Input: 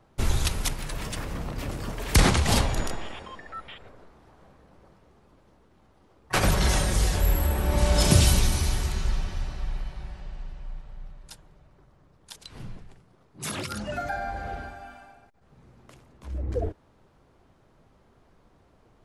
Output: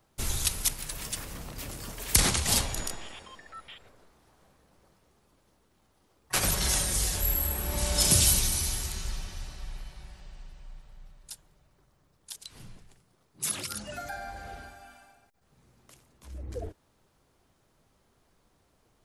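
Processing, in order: pre-emphasis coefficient 0.8; gain +5 dB

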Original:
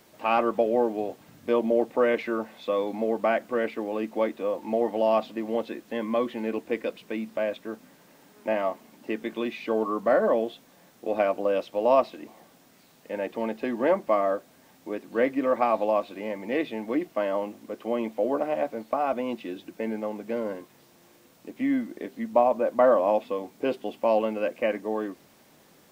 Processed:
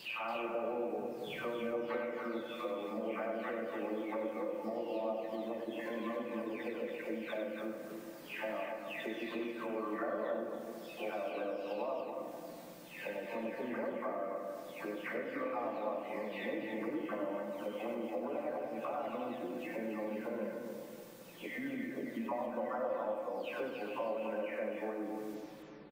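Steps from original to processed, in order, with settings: spectral delay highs early, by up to 0.568 s; compressor 4:1, threshold -41 dBFS, peak gain reduction 20 dB; loudspeakers at several distances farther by 33 m -7 dB, 97 m -6 dB; on a send at -4 dB: reverb RT60 2.5 s, pre-delay 4 ms

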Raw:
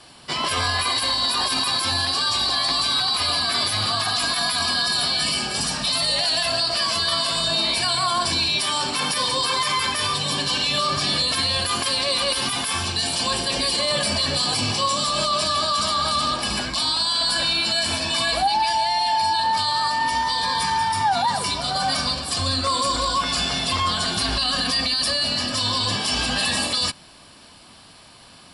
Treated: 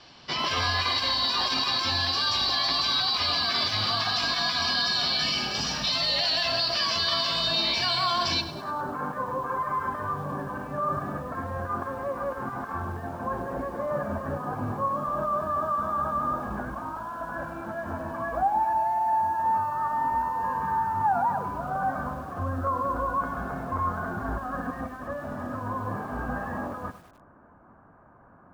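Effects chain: elliptic low-pass 5900 Hz, stop band 60 dB, from 8.4 s 1500 Hz; lo-fi delay 0.101 s, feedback 55%, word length 7-bit, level -13.5 dB; gain -3 dB

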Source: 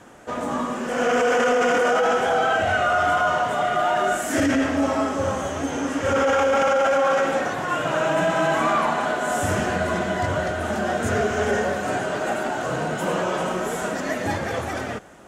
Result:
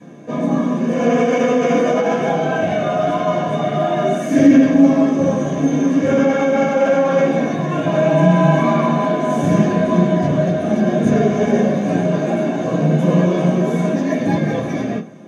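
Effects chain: 6.2–6.75 notch comb 490 Hz; reverb RT60 0.25 s, pre-delay 3 ms, DRR -10.5 dB; gain -15 dB

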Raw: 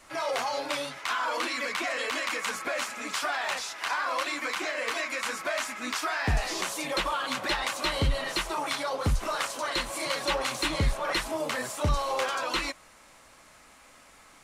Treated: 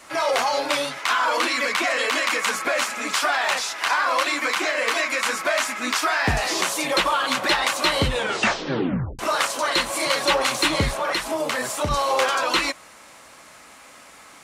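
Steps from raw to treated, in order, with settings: 8.03 tape stop 1.16 s; HPF 150 Hz 6 dB/oct; 10.91–11.91 compressor, threshold -29 dBFS, peak gain reduction 5.5 dB; gain +8.5 dB

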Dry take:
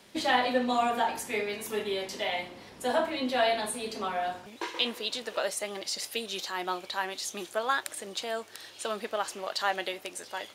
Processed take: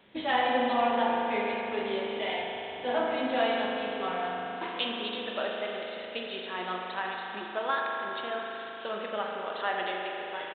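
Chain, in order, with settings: downsampling 8000 Hz; spring tank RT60 3.8 s, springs 38 ms, chirp 45 ms, DRR -1 dB; gain -3 dB

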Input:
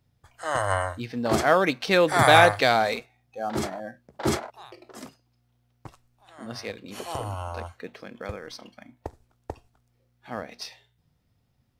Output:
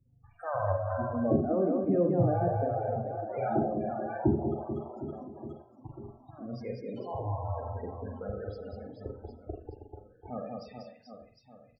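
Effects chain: high shelf 5300 Hz +8.5 dB; reverse bouncing-ball echo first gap 0.19 s, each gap 1.3×, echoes 5; in parallel at -2.5 dB: level quantiser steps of 23 dB; on the sum: loudest bins only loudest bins 16; treble ducked by the level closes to 350 Hz, closed at -18 dBFS; tape spacing loss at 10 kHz 34 dB; on a send at -3 dB: reverb, pre-delay 39 ms; on the sum: gain -2.5 dB

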